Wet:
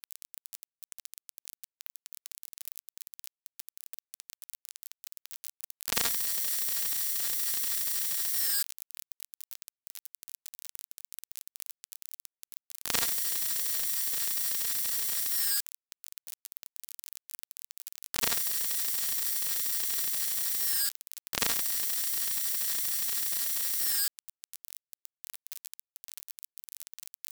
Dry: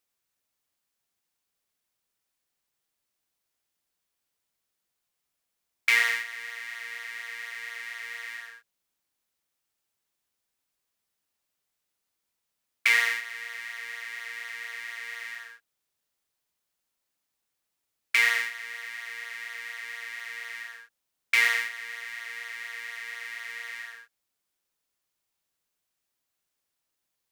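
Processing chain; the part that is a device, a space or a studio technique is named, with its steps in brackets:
budget class-D amplifier (gap after every zero crossing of 0.24 ms; spike at every zero crossing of −20 dBFS)
level +6.5 dB

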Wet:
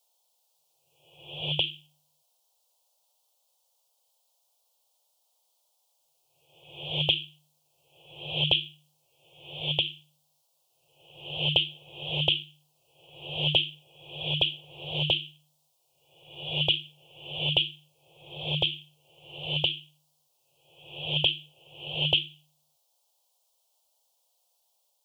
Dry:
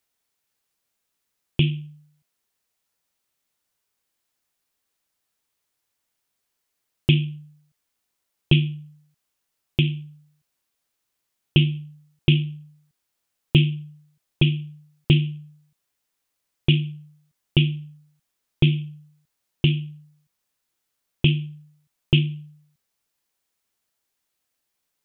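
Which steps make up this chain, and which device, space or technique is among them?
drawn EQ curve 110 Hz 0 dB, 260 Hz −27 dB, 520 Hz +7 dB, 840 Hz +7 dB, 1,800 Hz −28 dB, 3,100 Hz 0 dB
ghost voice (reversed playback; convolution reverb RT60 0.95 s, pre-delay 75 ms, DRR 1.5 dB; reversed playback; high-pass filter 780 Hz 6 dB per octave)
level +4.5 dB

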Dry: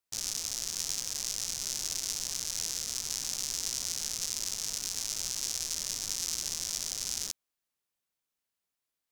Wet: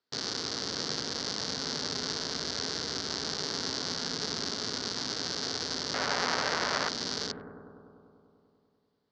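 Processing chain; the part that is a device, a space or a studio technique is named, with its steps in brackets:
analogue delay pedal into a guitar amplifier (bucket-brigade delay 98 ms, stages 1,024, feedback 79%, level −4 dB; tube saturation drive 20 dB, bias 0.35; loudspeaker in its box 100–4,600 Hz, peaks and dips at 150 Hz +4 dB, 260 Hz +9 dB, 430 Hz +9 dB, 1,500 Hz +4 dB, 2,500 Hz −8 dB, 4,500 Hz +7 dB)
0:05.94–0:06.89: flat-topped bell 1,200 Hz +11 dB 2.6 octaves
level +6.5 dB

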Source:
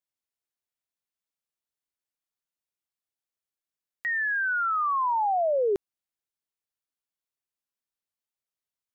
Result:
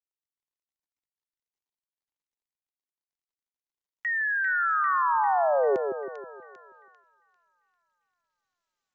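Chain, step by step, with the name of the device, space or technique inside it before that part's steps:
echo with a time of its own for lows and highs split 1,300 Hz, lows 160 ms, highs 396 ms, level −6 dB
noise gate −57 dBFS, range −6 dB
Bluetooth headset (high-pass filter 120 Hz 24 dB per octave; downsampling to 16,000 Hz; SBC 64 kbit/s 16,000 Hz)

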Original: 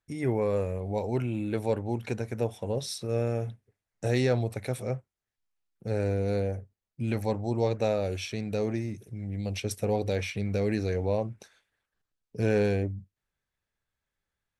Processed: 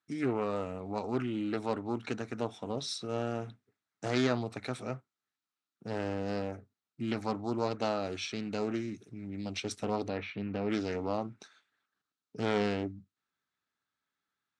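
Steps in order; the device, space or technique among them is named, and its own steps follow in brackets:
0:10.08–0:10.70: high-frequency loss of the air 360 metres
full-range speaker at full volume (highs frequency-modulated by the lows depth 0.4 ms; loudspeaker in its box 180–8,000 Hz, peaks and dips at 270 Hz +6 dB, 530 Hz −8 dB, 1,300 Hz +9 dB, 3,900 Hz +5 dB)
level −2 dB

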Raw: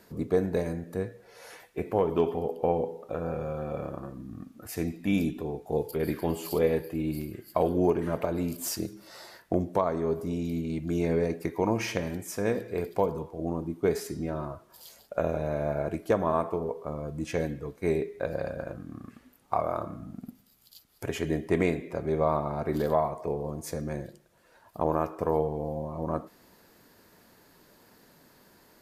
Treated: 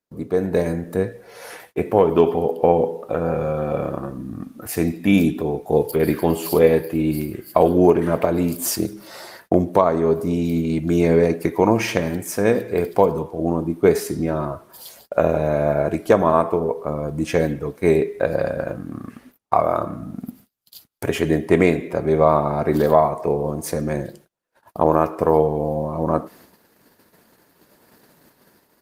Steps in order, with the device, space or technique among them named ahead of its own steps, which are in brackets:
0:23.50–0:23.97: dynamic equaliser 120 Hz, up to −3 dB, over −55 dBFS, Q 3
video call (high-pass filter 100 Hz 6 dB per octave; automatic gain control gain up to 9 dB; noise gate −48 dBFS, range −32 dB; level +2.5 dB; Opus 32 kbit/s 48,000 Hz)

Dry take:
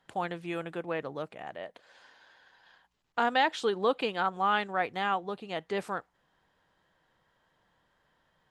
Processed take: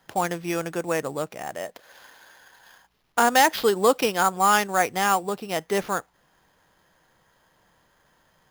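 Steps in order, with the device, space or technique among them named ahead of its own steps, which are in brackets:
early companding sampler (sample-rate reduction 8,200 Hz, jitter 0%; log-companded quantiser 8 bits)
level +8 dB

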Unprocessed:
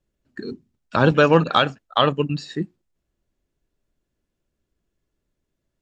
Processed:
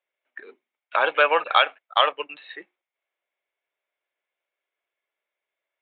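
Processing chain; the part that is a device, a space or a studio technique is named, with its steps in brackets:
musical greeting card (downsampling to 8,000 Hz; high-pass filter 590 Hz 24 dB per octave; parametric band 2,200 Hz +12 dB 0.22 octaves)

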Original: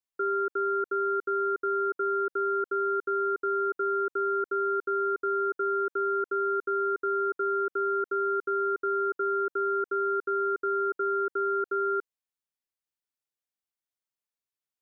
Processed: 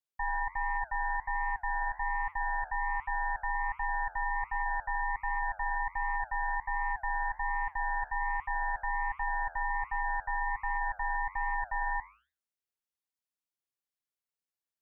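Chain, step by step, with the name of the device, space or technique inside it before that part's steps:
alien voice (ring modulation 420 Hz; flanger 1.3 Hz, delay 6.1 ms, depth 8.3 ms, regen −86%)
level +3.5 dB

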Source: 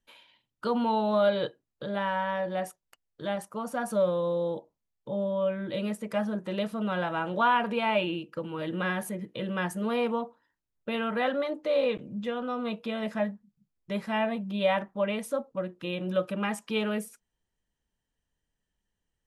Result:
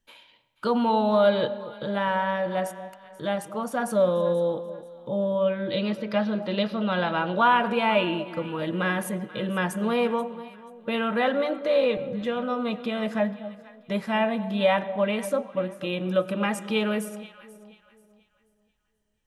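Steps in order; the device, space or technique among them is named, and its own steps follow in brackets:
0:05.44–0:07.37: high shelf with overshoot 6,000 Hz −11 dB, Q 3
filtered reverb send (on a send at −16.5 dB: high-pass filter 480 Hz + low-pass filter 5,500 Hz 12 dB per octave + convolution reverb RT60 1.3 s, pre-delay 81 ms)
on the sum: delay that swaps between a low-pass and a high-pass 242 ms, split 860 Hz, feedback 55%, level −12.5 dB
level +4 dB

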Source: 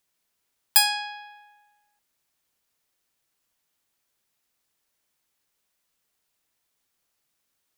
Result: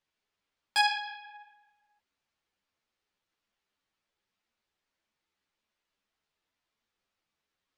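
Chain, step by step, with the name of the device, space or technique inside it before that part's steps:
string-machine ensemble chorus (string-ensemble chorus; low-pass filter 4,000 Hz 12 dB per octave)

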